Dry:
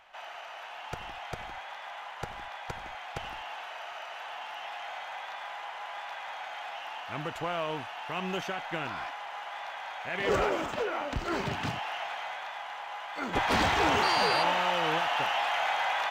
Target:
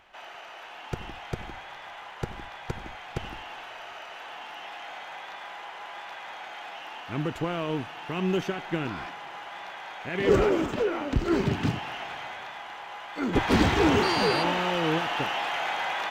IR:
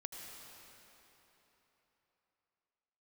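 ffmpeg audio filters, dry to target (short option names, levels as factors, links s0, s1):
-filter_complex "[0:a]lowshelf=f=490:t=q:w=1.5:g=8,asplit=2[s0][s1];[1:a]atrim=start_sample=2205[s2];[s1][s2]afir=irnorm=-1:irlink=0,volume=0.133[s3];[s0][s3]amix=inputs=2:normalize=0"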